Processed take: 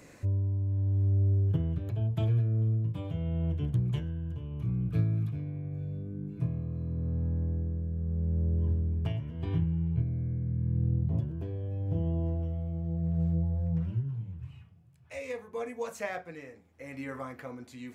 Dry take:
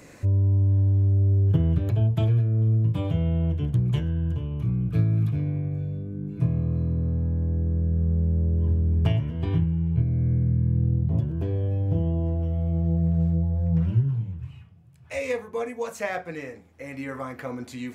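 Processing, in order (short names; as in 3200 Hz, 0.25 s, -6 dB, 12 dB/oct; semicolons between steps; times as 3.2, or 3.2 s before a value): tremolo 0.82 Hz, depth 44%; gain -5 dB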